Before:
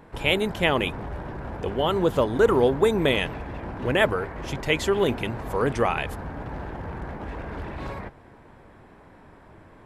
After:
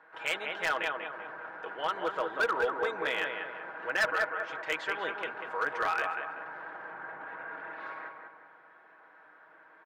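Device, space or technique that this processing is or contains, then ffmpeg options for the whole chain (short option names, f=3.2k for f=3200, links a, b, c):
megaphone: -filter_complex "[0:a]asettb=1/sr,asplit=3[a][b][c];[a]atrim=end=6.914[d];[b]atrim=start=6.91:end=7.73,asetpts=PTS-STARTPTS,afade=t=in:d=0.004:c=qsin,afade=t=out:st=0.816:d=0.004:c=qsin,bass=f=250:g=4,treble=f=4k:g=-9[e];[c]atrim=start=7.726[f];[d][e]acrossfade=d=0.004:c1=hsin:c2=qsin[g];[g][f]acrossfade=d=0.004:c1=qsin:c2=hsin,highpass=650,lowpass=3.1k,equalizer=f=1.5k:t=o:w=0.55:g=11.5,aecho=1:1:6.3:0.54,asplit=2[h][i];[i]adelay=191,lowpass=f=2k:p=1,volume=-4dB,asplit=2[j][k];[k]adelay=191,lowpass=f=2k:p=1,volume=0.47,asplit=2[l][m];[m]adelay=191,lowpass=f=2k:p=1,volume=0.47,asplit=2[n][o];[o]adelay=191,lowpass=f=2k:p=1,volume=0.47,asplit=2[p][q];[q]adelay=191,lowpass=f=2k:p=1,volume=0.47,asplit=2[r][s];[s]adelay=191,lowpass=f=2k:p=1,volume=0.47[t];[h][j][l][n][p][r][t]amix=inputs=7:normalize=0,asoftclip=type=hard:threshold=-14dB,volume=-8.5dB"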